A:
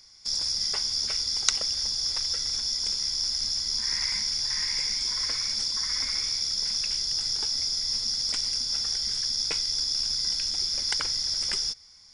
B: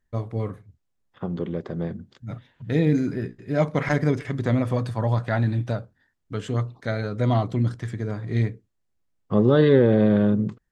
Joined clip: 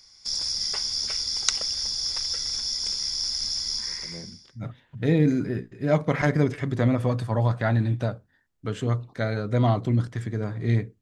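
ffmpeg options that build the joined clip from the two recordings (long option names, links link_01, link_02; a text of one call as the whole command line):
ffmpeg -i cue0.wav -i cue1.wav -filter_complex "[0:a]apad=whole_dur=11.01,atrim=end=11.01,atrim=end=4.65,asetpts=PTS-STARTPTS[link_01];[1:a]atrim=start=1.38:end=8.68,asetpts=PTS-STARTPTS[link_02];[link_01][link_02]acrossfade=duration=0.94:curve1=qua:curve2=qua" out.wav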